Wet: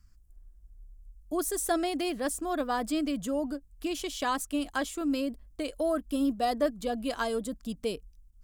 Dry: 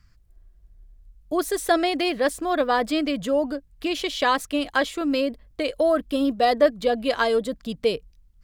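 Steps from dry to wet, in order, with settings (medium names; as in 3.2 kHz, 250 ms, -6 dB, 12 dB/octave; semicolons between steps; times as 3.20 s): ten-band graphic EQ 125 Hz -10 dB, 500 Hz -10 dB, 1 kHz -4 dB, 2 kHz -10 dB, 4 kHz -9 dB, 8 kHz +3 dB; endings held to a fixed fall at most 480 dB/s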